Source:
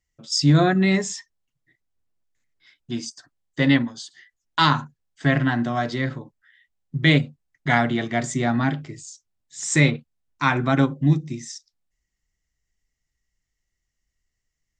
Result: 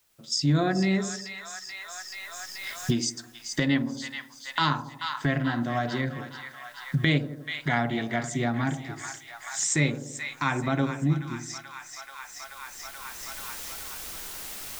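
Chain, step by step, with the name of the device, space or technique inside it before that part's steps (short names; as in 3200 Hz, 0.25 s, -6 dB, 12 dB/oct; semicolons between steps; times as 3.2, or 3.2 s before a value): 3.01–3.66 high shelf 4400 Hz +7.5 dB; split-band echo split 880 Hz, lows 83 ms, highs 0.432 s, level -10.5 dB; cheap recorder with automatic gain (white noise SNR 38 dB; recorder AGC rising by 13 dB/s); gain -7 dB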